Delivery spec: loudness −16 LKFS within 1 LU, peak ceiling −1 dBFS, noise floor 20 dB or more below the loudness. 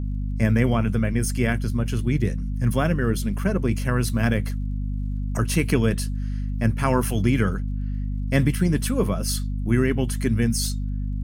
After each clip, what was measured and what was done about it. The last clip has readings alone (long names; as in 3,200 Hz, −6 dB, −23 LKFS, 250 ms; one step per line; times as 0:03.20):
crackle rate 40 per second; mains hum 50 Hz; hum harmonics up to 250 Hz; level of the hum −24 dBFS; integrated loudness −24.0 LKFS; sample peak −5.5 dBFS; target loudness −16.0 LKFS
→ click removal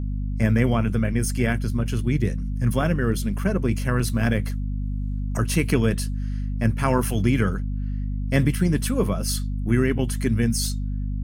crackle rate 1.6 per second; mains hum 50 Hz; hum harmonics up to 250 Hz; level of the hum −24 dBFS
→ hum removal 50 Hz, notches 5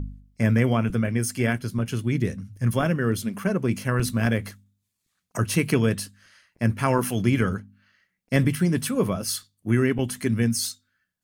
mains hum none found; integrated loudness −24.5 LKFS; sample peak −6.5 dBFS; target loudness −16.0 LKFS
→ level +8.5 dB
brickwall limiter −1 dBFS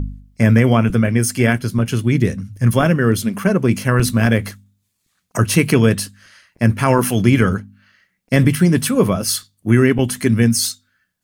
integrated loudness −16.5 LKFS; sample peak −1.0 dBFS; background noise floor −70 dBFS